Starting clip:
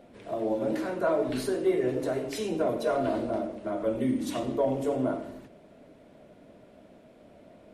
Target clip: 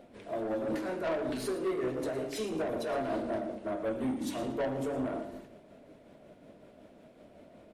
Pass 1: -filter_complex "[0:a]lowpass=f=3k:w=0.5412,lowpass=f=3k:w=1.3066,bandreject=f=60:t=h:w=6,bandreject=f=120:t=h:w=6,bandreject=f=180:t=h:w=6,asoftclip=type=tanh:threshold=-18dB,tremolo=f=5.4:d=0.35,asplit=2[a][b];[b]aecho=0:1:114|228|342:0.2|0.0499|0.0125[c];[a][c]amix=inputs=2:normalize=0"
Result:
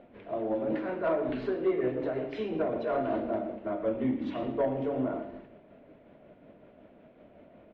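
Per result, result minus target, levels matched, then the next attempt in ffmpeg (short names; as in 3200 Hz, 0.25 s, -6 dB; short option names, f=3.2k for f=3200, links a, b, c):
4000 Hz band -8.5 dB; soft clip: distortion -11 dB
-filter_complex "[0:a]bandreject=f=60:t=h:w=6,bandreject=f=120:t=h:w=6,bandreject=f=180:t=h:w=6,asoftclip=type=tanh:threshold=-18dB,tremolo=f=5.4:d=0.35,asplit=2[a][b];[b]aecho=0:1:114|228|342:0.2|0.0499|0.0125[c];[a][c]amix=inputs=2:normalize=0"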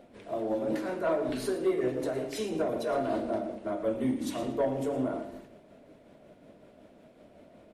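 soft clip: distortion -11 dB
-filter_complex "[0:a]bandreject=f=60:t=h:w=6,bandreject=f=120:t=h:w=6,bandreject=f=180:t=h:w=6,asoftclip=type=tanh:threshold=-27dB,tremolo=f=5.4:d=0.35,asplit=2[a][b];[b]aecho=0:1:114|228|342:0.2|0.0499|0.0125[c];[a][c]amix=inputs=2:normalize=0"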